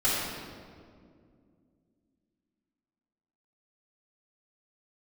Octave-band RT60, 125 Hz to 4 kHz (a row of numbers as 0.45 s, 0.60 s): 3.1 s, 3.4 s, 2.5 s, 1.8 s, 1.5 s, 1.3 s